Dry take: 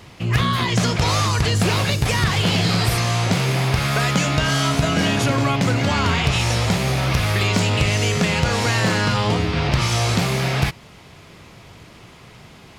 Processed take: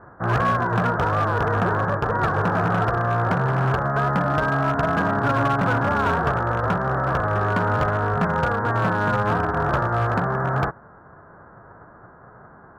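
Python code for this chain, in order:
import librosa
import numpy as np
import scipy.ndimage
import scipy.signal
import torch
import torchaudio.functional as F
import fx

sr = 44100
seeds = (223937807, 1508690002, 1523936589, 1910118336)

y = fx.envelope_flatten(x, sr, power=0.1)
y = scipy.signal.sosfilt(scipy.signal.butter(12, 1600.0, 'lowpass', fs=sr, output='sos'), y)
y = np.clip(y, -10.0 ** (-21.0 / 20.0), 10.0 ** (-21.0 / 20.0))
y = y * 10.0 ** (6.0 / 20.0)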